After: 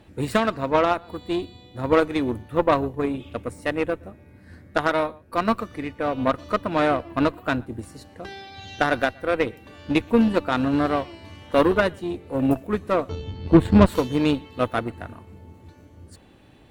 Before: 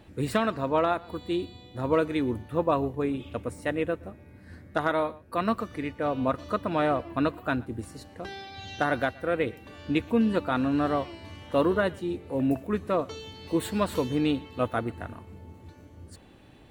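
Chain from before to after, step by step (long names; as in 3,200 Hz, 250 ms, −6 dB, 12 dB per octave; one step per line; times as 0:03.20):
0:13.09–0:13.86: RIAA equalisation playback
harmonic generator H 4 −19 dB, 7 −23 dB, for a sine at −9.5 dBFS
level +7 dB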